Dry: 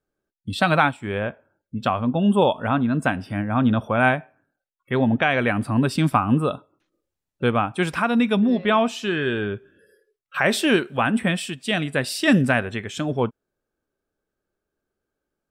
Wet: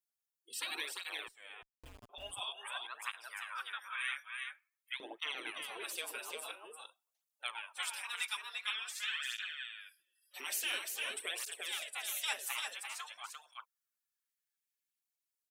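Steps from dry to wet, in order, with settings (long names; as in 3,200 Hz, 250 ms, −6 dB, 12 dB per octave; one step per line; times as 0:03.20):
gate on every frequency bin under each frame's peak −15 dB weak
first-order pre-emphasis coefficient 0.9
auto-filter high-pass saw up 0.2 Hz 260–2,400 Hz
0:01.28–0:02.10: comparator with hysteresis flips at −40 dBFS
0:04.14–0:04.97: frequency shifter −95 Hz
single-tap delay 346 ms −4.5 dB
through-zero flanger with one copy inverted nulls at 0.48 Hz, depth 6.5 ms
level +2 dB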